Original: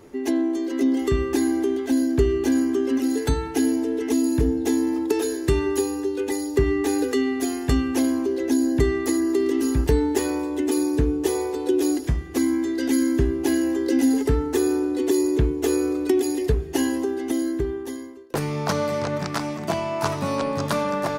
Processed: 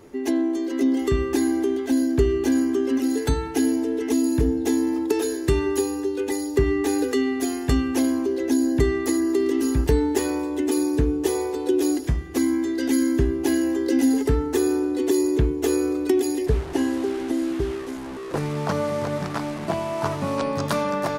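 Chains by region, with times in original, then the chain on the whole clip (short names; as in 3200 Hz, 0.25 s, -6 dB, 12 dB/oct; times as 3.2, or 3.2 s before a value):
16.47–20.38 delta modulation 64 kbps, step -27 dBFS + high shelf 2800 Hz -10.5 dB
whole clip: dry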